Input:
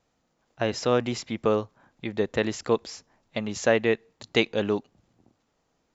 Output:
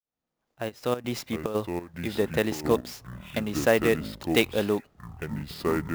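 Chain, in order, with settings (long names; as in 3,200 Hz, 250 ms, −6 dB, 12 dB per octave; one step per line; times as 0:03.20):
fade in at the beginning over 1.27 s
0:00.68–0:01.54: gate pattern "x.xxxx.." 144 BPM −12 dB
delay with pitch and tempo change per echo 462 ms, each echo −6 semitones, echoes 3, each echo −6 dB
converter with an unsteady clock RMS 0.021 ms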